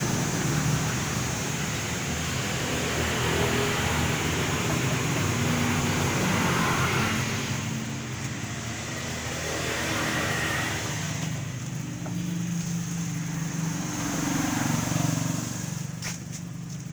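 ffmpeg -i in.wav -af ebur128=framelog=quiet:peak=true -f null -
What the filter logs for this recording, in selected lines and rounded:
Integrated loudness:
  I:         -27.3 LUFS
  Threshold: -37.3 LUFS
Loudness range:
  LRA:         4.6 LU
  Threshold: -47.2 LUFS
  LRA low:   -29.5 LUFS
  LRA high:  -25.0 LUFS
True peak:
  Peak:      -11.7 dBFS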